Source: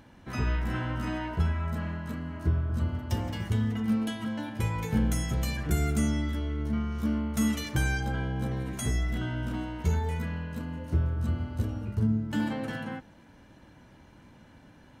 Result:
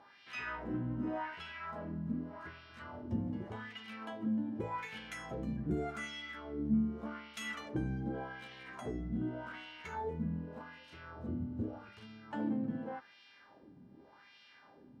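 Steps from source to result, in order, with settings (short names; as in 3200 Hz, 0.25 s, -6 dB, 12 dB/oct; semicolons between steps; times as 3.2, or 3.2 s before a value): buzz 400 Hz, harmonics 14, -59 dBFS -1 dB/oct; wah 0.85 Hz 200–2900 Hz, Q 2.1; gain +2 dB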